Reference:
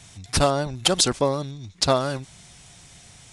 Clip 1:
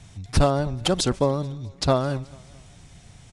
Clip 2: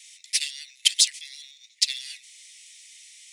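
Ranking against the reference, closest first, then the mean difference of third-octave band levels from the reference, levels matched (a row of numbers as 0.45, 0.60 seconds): 1, 2; 4.0, 16.5 decibels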